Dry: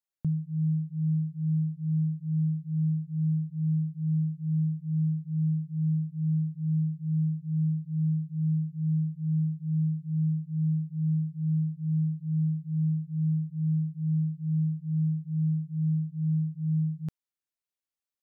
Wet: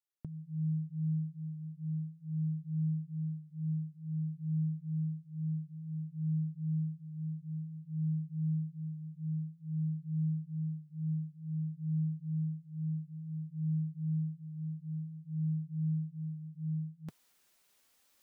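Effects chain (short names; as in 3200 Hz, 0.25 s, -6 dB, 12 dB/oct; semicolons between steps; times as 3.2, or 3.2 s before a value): low shelf 200 Hz -4.5 dB; reverse; upward compressor, threshold -45 dBFS; reverse; flange 0.54 Hz, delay 2.2 ms, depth 3.2 ms, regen -46%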